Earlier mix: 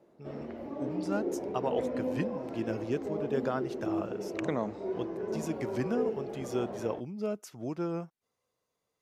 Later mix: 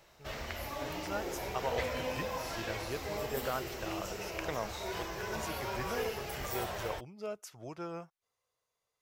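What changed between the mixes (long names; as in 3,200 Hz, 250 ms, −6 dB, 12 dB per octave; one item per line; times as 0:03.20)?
background: remove resonant band-pass 380 Hz, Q 1.2
master: add parametric band 240 Hz −14.5 dB 1.6 octaves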